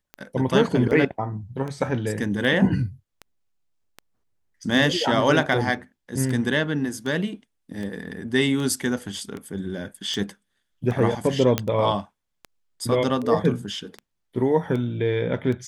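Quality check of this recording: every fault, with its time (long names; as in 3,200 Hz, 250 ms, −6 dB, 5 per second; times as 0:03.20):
scratch tick 78 rpm −21 dBFS
0:11.58: click −6 dBFS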